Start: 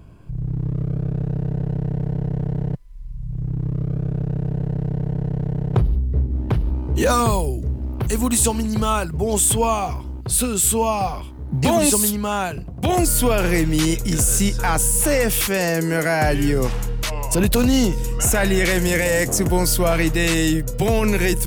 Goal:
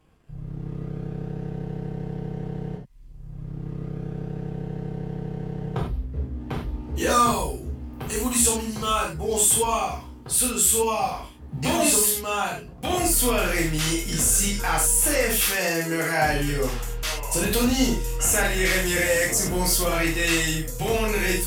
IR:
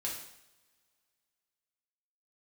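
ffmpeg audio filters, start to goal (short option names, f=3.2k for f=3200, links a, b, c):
-filter_complex "[0:a]lowshelf=f=430:g=-7,aeval=exprs='sgn(val(0))*max(abs(val(0))-0.00316,0)':c=same[a];[1:a]atrim=start_sample=2205,atrim=end_sample=3528,asetrate=33075,aresample=44100[b];[a][b]afir=irnorm=-1:irlink=0,volume=-4dB"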